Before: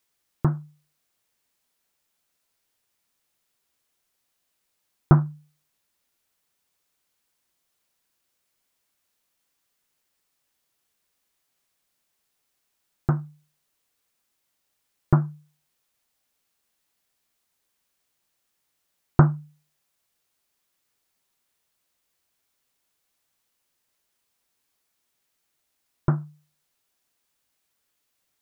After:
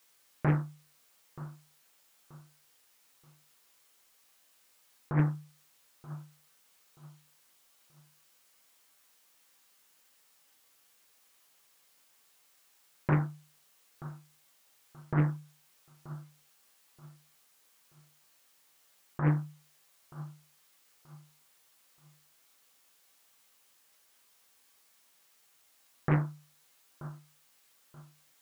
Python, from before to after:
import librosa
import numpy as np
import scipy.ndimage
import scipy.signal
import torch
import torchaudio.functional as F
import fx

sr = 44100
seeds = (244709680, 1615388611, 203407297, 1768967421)

y = fx.low_shelf(x, sr, hz=300.0, db=-10.0)
y = fx.over_compress(y, sr, threshold_db=-30.0, ratio=-1.0)
y = fx.echo_feedback(y, sr, ms=930, feedback_pct=32, wet_db=-17)
y = fx.rev_gated(y, sr, seeds[0], gate_ms=130, shape='falling', drr_db=2.5)
y = fx.doppler_dist(y, sr, depth_ms=0.88)
y = F.gain(torch.from_numpy(y), 3.0).numpy()